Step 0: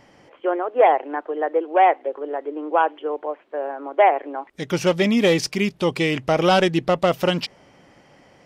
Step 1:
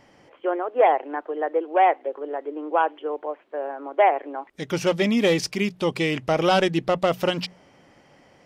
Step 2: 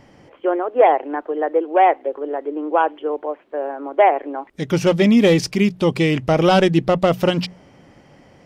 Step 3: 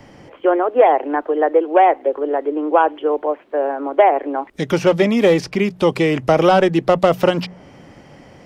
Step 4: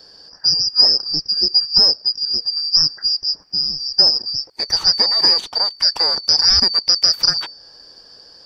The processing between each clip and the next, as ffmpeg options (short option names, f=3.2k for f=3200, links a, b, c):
-af "bandreject=f=60:t=h:w=6,bandreject=f=120:t=h:w=6,bandreject=f=180:t=h:w=6,volume=-2.5dB"
-af "lowshelf=f=320:g=9,volume=2.5dB"
-filter_complex "[0:a]acrossover=split=150|370|1900|4700[a][b][c][d][e];[a]acompressor=threshold=-38dB:ratio=4[f];[b]acompressor=threshold=-30dB:ratio=4[g];[c]acompressor=threshold=-15dB:ratio=4[h];[d]acompressor=threshold=-39dB:ratio=4[i];[e]acompressor=threshold=-47dB:ratio=4[j];[f][g][h][i][j]amix=inputs=5:normalize=0,volume=5.5dB"
-af "afftfilt=real='real(if(lt(b,272),68*(eq(floor(b/68),0)*1+eq(floor(b/68),1)*2+eq(floor(b/68),2)*3+eq(floor(b/68),3)*0)+mod(b,68),b),0)':imag='imag(if(lt(b,272),68*(eq(floor(b/68),0)*1+eq(floor(b/68),1)*2+eq(floor(b/68),2)*3+eq(floor(b/68),3)*0)+mod(b,68),b),0)':win_size=2048:overlap=0.75,volume=-1dB"